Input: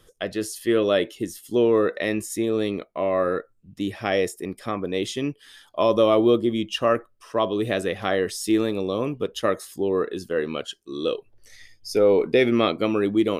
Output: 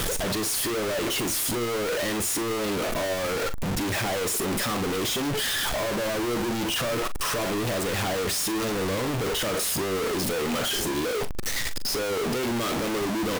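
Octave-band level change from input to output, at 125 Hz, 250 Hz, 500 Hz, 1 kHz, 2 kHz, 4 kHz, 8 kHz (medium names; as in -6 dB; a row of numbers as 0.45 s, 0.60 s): +1.5 dB, -4.5 dB, -6.5 dB, -1.0 dB, +2.0 dB, +4.5 dB, +10.5 dB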